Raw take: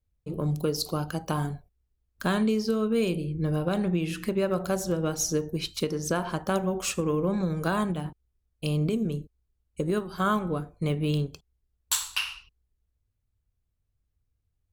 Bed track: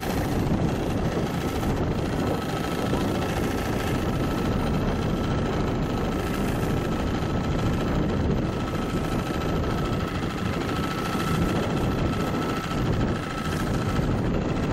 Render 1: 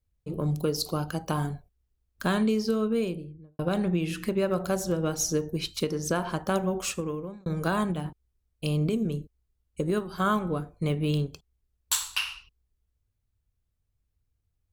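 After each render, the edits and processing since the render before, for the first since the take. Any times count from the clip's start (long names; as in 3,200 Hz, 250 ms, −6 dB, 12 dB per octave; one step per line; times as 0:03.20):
0:02.75–0:03.59: fade out and dull
0:06.77–0:07.46: fade out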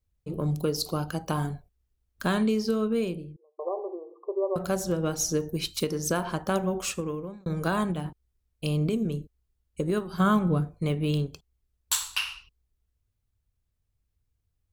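0:03.36–0:04.56: linear-phase brick-wall band-pass 350–1,200 Hz
0:05.40–0:06.21: high-shelf EQ 8,600 Hz +8.5 dB
0:10.13–0:10.79: parametric band 150 Hz +8.5 dB 1.3 octaves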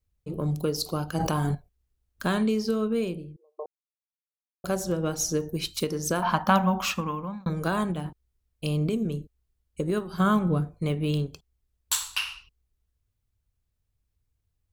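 0:01.15–0:01.55: envelope flattener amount 100%
0:03.66–0:04.64: silence
0:06.22–0:07.50: drawn EQ curve 140 Hz 0 dB, 220 Hz +9 dB, 390 Hz −9 dB, 910 Hz +13 dB, 1,700 Hz +7 dB, 3,100 Hz +7 dB, 5,800 Hz +2 dB, 8,700 Hz −10 dB, 13,000 Hz +4 dB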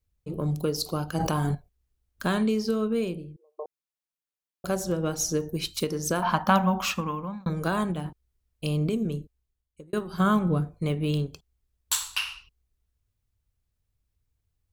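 0:09.15–0:09.93: fade out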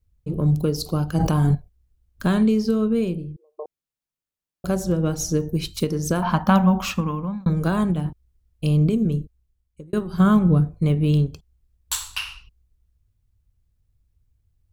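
low-shelf EQ 270 Hz +12 dB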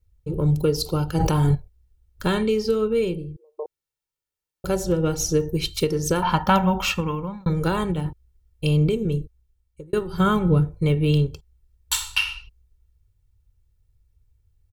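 dynamic equaliser 2,800 Hz, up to +5 dB, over −46 dBFS, Q 1.4
comb filter 2.2 ms, depth 60%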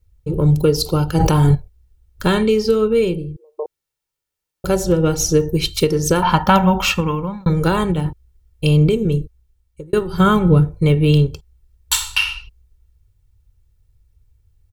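level +6 dB
brickwall limiter −2 dBFS, peak gain reduction 2.5 dB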